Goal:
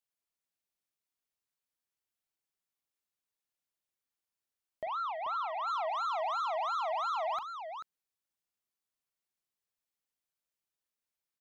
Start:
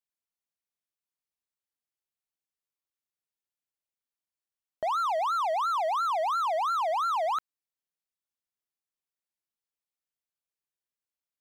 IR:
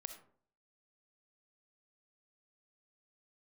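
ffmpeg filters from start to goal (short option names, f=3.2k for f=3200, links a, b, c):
-filter_complex "[0:a]asoftclip=type=tanh:threshold=-32.5dB,asplit=3[a][b][c];[a]afade=t=out:st=4.85:d=0.02[d];[b]highpass=790,lowpass=3k,afade=t=in:st=4.85:d=0.02,afade=t=out:st=5.66:d=0.02[e];[c]afade=t=in:st=5.66:d=0.02[f];[d][e][f]amix=inputs=3:normalize=0,asplit=2[g][h];[h]aecho=0:1:41|437:0.2|0.422[i];[g][i]amix=inputs=2:normalize=0"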